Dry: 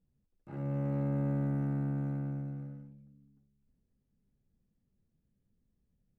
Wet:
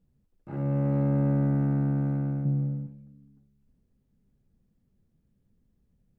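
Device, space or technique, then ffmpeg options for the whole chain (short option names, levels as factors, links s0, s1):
behind a face mask: -filter_complex "[0:a]asettb=1/sr,asplit=3[s0][s1][s2];[s0]atrim=end=2.454[s3];[s1]atrim=start=2.45:end=2.87,asetpts=PTS-STARTPTS,afade=t=in:d=0.004:c=qsin,afade=t=out:st=0.416:d=0.004:c=qsin,equalizer=f=160:t=o:w=0.67:g=10,equalizer=f=400:t=o:w=0.67:g=4,equalizer=f=1600:t=o:w=0.67:g=-8[s4];[s2]atrim=start=2.866[s5];[s3][s4]acrossfade=d=0.004:c1=hsin:c2=qsin[s6];[s6][s5]acrossfade=d=0.004:c1=qsin:c2=hsin,highshelf=f=2300:g=-7,volume=2.37"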